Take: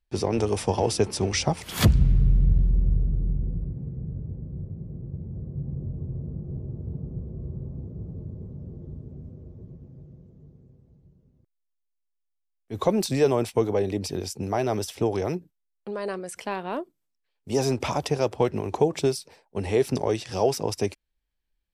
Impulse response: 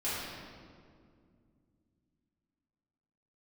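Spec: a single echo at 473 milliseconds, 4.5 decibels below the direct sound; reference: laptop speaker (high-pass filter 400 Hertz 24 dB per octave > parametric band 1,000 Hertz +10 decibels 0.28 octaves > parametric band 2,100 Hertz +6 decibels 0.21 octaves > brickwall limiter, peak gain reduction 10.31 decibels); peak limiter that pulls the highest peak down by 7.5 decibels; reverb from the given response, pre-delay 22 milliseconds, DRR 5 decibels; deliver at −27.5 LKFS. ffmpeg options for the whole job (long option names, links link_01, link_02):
-filter_complex "[0:a]alimiter=limit=-16.5dB:level=0:latency=1,aecho=1:1:473:0.596,asplit=2[link_01][link_02];[1:a]atrim=start_sample=2205,adelay=22[link_03];[link_02][link_03]afir=irnorm=-1:irlink=0,volume=-12dB[link_04];[link_01][link_04]amix=inputs=2:normalize=0,highpass=frequency=400:width=0.5412,highpass=frequency=400:width=1.3066,equalizer=frequency=1000:width_type=o:width=0.28:gain=10,equalizer=frequency=2100:width_type=o:width=0.21:gain=6,volume=5dB,alimiter=limit=-18dB:level=0:latency=1"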